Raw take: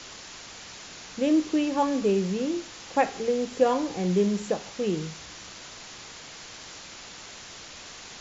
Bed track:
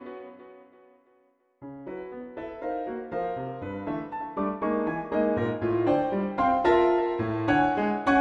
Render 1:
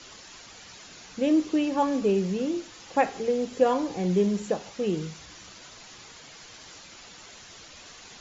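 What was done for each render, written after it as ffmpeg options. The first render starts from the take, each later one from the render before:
-af "afftdn=nr=7:nf=-44"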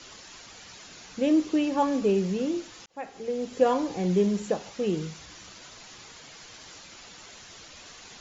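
-filter_complex "[0:a]asplit=2[a][b];[a]atrim=end=2.86,asetpts=PTS-STARTPTS,afade=t=out:st=2.856:d=0.004:c=hsin[c];[b]atrim=start=2.86,asetpts=PTS-STARTPTS,afade=t=in:d=0.79[d];[c][d]concat=n=2:v=0:a=1"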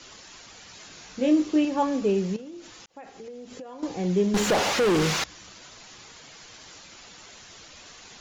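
-filter_complex "[0:a]asettb=1/sr,asplit=3[a][b][c];[a]atrim=end=0.734[d];[b]atrim=start=0.73:end=1.65,asetpts=PTS-STARTPTS,afade=t=in:d=0.004:c=qsin,afade=t=out:st=0.916:d=0.004:c=qsin,asplit=2[e][f];[f]adelay=20,volume=-5.5dB[g];[e][g]amix=inputs=2:normalize=0,atrim=end_sample=40572[h];[c]atrim=start=1.646[i];[d][h]acrossfade=d=0.004:c1=hsin:c2=qsin[j];[j][i]acrossfade=d=0.004:c1=qsin:c2=hsin,asettb=1/sr,asplit=3[k][l][m];[k]atrim=end=2.364[n];[l]atrim=start=2.36:end=3.83,asetpts=PTS-STARTPTS,afade=t=in:d=0.004:c=qsin,afade=t=out:st=1.466:d=0.004:c=qsin,acompressor=threshold=-37dB:ratio=12:attack=3.2:release=140:knee=1:detection=peak[o];[m]atrim=start=3.826[p];[n][o]acrossfade=d=0.004:c1=hsin:c2=qsin[q];[q][p]acrossfade=d=0.004:c1=qsin:c2=hsin,asettb=1/sr,asplit=3[r][s][t];[r]atrim=end=4.344[u];[s]atrim=start=4.34:end=5.24,asetpts=PTS-STARTPTS,afade=t=in:d=0.004:c=qsin,afade=t=out:st=0.896:d=0.004:c=qsin,asplit=2[v][w];[w]highpass=f=720:p=1,volume=38dB,asoftclip=type=tanh:threshold=-14.5dB[x];[v][x]amix=inputs=2:normalize=0,lowpass=f=2.8k:p=1,volume=-6dB[y];[t]atrim=start=5.236[z];[u][y]acrossfade=d=0.004:c1=hsin:c2=qsin[aa];[aa][z]acrossfade=d=0.004:c1=qsin:c2=hsin"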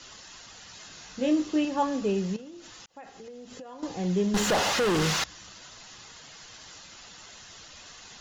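-af "equalizer=f=370:w=0.93:g=-4.5,bandreject=f=2.3k:w=12"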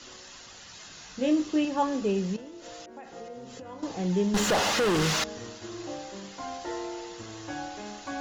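-filter_complex "[1:a]volume=-14.5dB[a];[0:a][a]amix=inputs=2:normalize=0"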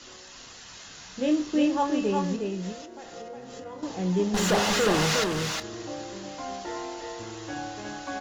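-filter_complex "[0:a]asplit=2[a][b];[b]adelay=27,volume=-13dB[c];[a][c]amix=inputs=2:normalize=0,aecho=1:1:361:0.631"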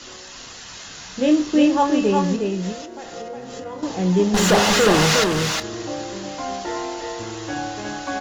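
-af "volume=7.5dB"

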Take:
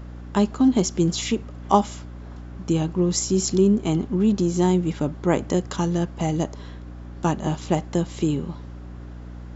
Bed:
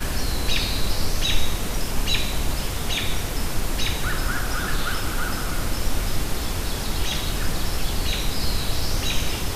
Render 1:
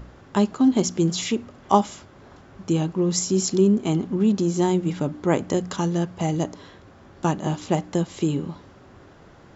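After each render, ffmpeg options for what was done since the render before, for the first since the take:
-af "bandreject=f=60:t=h:w=4,bandreject=f=120:t=h:w=4,bandreject=f=180:t=h:w=4,bandreject=f=240:t=h:w=4,bandreject=f=300:t=h:w=4"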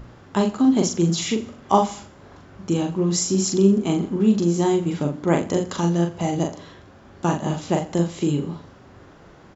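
-filter_complex "[0:a]asplit=2[a][b];[b]adelay=41,volume=-4dB[c];[a][c]amix=inputs=2:normalize=0,aecho=1:1:84|168|252:0.126|0.0504|0.0201"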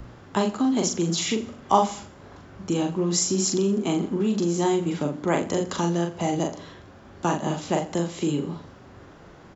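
-filter_complex "[0:a]acrossover=split=190|620|2100[a][b][c][d];[a]acompressor=threshold=-35dB:ratio=6[e];[b]alimiter=limit=-19dB:level=0:latency=1[f];[e][f][c][d]amix=inputs=4:normalize=0"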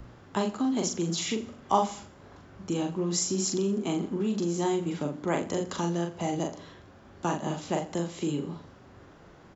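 -af "volume=-5dB"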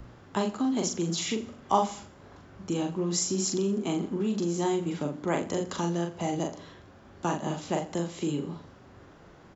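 -af anull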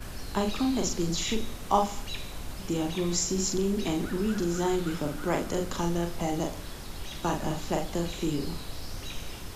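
-filter_complex "[1:a]volume=-14.5dB[a];[0:a][a]amix=inputs=2:normalize=0"

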